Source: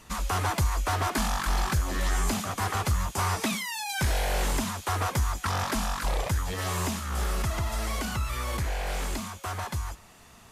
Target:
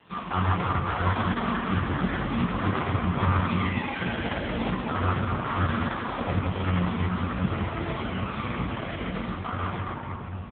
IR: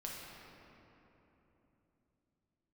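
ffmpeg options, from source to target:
-filter_complex "[0:a]asplit=2[a][b];[b]adelay=21,volume=-5.5dB[c];[a][c]amix=inputs=2:normalize=0,asplit=3[d][e][f];[d]afade=t=out:st=1.85:d=0.02[g];[e]asplit=7[h][i][j][k][l][m][n];[i]adelay=121,afreqshift=87,volume=-16dB[o];[j]adelay=242,afreqshift=174,volume=-20.2dB[p];[k]adelay=363,afreqshift=261,volume=-24.3dB[q];[l]adelay=484,afreqshift=348,volume=-28.5dB[r];[m]adelay=605,afreqshift=435,volume=-32.6dB[s];[n]adelay=726,afreqshift=522,volume=-36.8dB[t];[h][o][p][q][r][s][t]amix=inputs=7:normalize=0,afade=t=in:st=1.85:d=0.02,afade=t=out:st=4.03:d=0.02[u];[f]afade=t=in:st=4.03:d=0.02[v];[g][u][v]amix=inputs=3:normalize=0[w];[1:a]atrim=start_sample=2205[x];[w][x]afir=irnorm=-1:irlink=0,volume=6.5dB" -ar 8000 -c:a libopencore_amrnb -b:a 4750

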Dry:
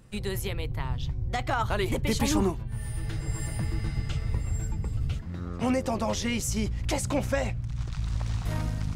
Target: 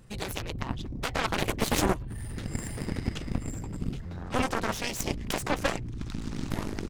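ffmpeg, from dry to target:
-af "aeval=exprs='0.224*(cos(1*acos(clip(val(0)/0.224,-1,1)))-cos(1*PI/2))+0.01*(cos(2*acos(clip(val(0)/0.224,-1,1)))-cos(2*PI/2))+0.00562*(cos(3*acos(clip(val(0)/0.224,-1,1)))-cos(3*PI/2))+0.00501*(cos(6*acos(clip(val(0)/0.224,-1,1)))-cos(6*PI/2))+0.0631*(cos(7*acos(clip(val(0)/0.224,-1,1)))-cos(7*PI/2))':c=same,atempo=1.3"

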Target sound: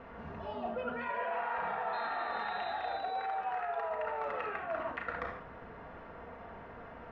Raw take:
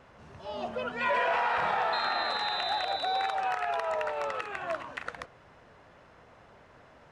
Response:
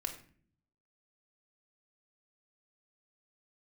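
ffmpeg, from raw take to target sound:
-filter_complex "[0:a]lowpass=2k[a];[1:a]atrim=start_sample=2205,afade=t=out:st=0.18:d=0.01,atrim=end_sample=8379,asetrate=28665,aresample=44100[b];[a][b]afir=irnorm=-1:irlink=0,areverse,acompressor=threshold=-40dB:ratio=5,areverse,volume=5dB"

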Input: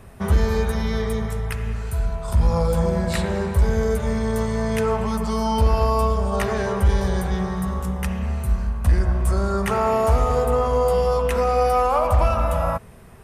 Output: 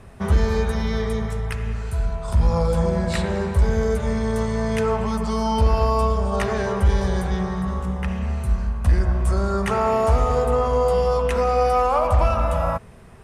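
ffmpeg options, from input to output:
-filter_complex "[0:a]asettb=1/sr,asplit=3[a][b][c];[a]atrim=end=7.434[d];[b]atrim=start=7.43:end=8.08,asetpts=PTS-STARTPTS,afade=t=in:d=0.004:c=qsin,afade=t=out:st=0.646:d=0.004:c=qsin,acrossover=split=3400[e][f];[f]acompressor=threshold=-45dB:ratio=4:attack=1:release=60[g];[e][g]amix=inputs=2:normalize=0[h];[c]atrim=start=8.076[i];[d][h]acrossfade=d=0.004:c1=hsin:c2=qsin[j];[j][i]acrossfade=d=0.004:c1=qsin:c2=hsin,lowpass=8.9k"

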